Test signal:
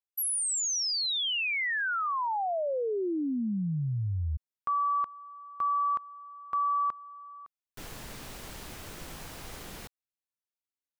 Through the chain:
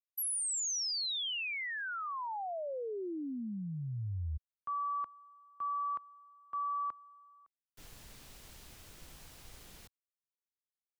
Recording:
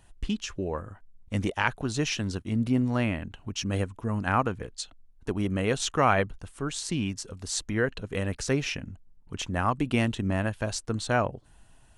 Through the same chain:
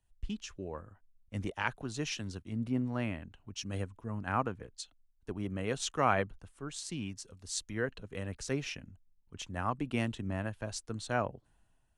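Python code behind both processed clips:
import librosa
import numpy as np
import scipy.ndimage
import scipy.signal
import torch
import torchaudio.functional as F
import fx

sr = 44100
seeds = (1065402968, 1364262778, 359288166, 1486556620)

y = fx.band_widen(x, sr, depth_pct=40)
y = y * 10.0 ** (-8.5 / 20.0)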